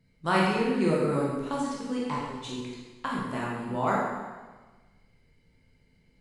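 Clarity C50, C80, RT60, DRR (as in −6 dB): 0.0 dB, 2.0 dB, 1.3 s, −5.0 dB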